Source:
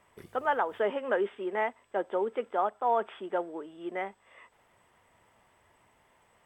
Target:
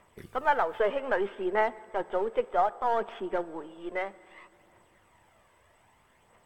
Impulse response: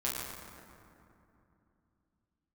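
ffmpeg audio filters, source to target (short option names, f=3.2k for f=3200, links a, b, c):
-filter_complex "[0:a]aeval=exprs='if(lt(val(0),0),0.708*val(0),val(0))':c=same,aphaser=in_gain=1:out_gain=1:delay=2:decay=0.37:speed=0.63:type=triangular,asplit=2[a][b];[1:a]atrim=start_sample=2205[c];[b][c]afir=irnorm=-1:irlink=0,volume=-22.5dB[d];[a][d]amix=inputs=2:normalize=0,volume=2dB"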